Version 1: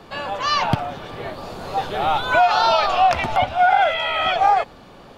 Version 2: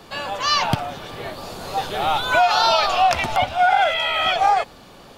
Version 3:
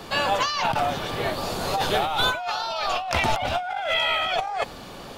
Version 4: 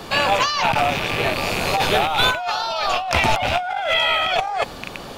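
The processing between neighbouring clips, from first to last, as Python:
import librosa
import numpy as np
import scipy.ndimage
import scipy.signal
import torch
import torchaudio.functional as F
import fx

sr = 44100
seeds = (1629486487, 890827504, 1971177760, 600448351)

y1 = fx.high_shelf(x, sr, hz=4100.0, db=11.5)
y1 = F.gain(torch.from_numpy(y1), -1.5).numpy()
y2 = fx.over_compress(y1, sr, threshold_db=-25.0, ratio=-1.0)
y3 = fx.rattle_buzz(y2, sr, strikes_db=-39.0, level_db=-17.0)
y3 = F.gain(torch.from_numpy(y3), 4.5).numpy()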